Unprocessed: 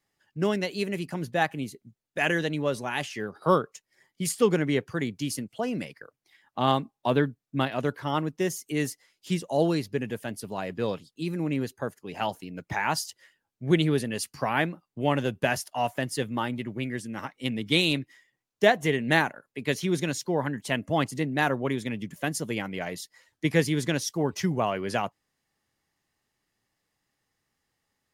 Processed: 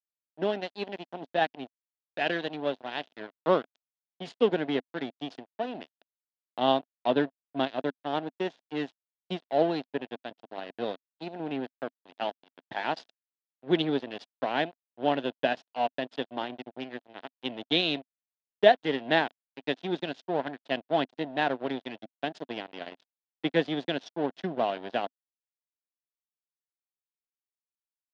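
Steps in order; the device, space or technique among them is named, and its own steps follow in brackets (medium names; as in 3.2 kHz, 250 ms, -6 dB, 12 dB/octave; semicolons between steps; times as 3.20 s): blown loudspeaker (crossover distortion -31.5 dBFS; cabinet simulation 250–3900 Hz, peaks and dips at 260 Hz +4 dB, 680 Hz +6 dB, 1.2 kHz -7 dB, 2.2 kHz -7 dB, 3.5 kHz +4 dB)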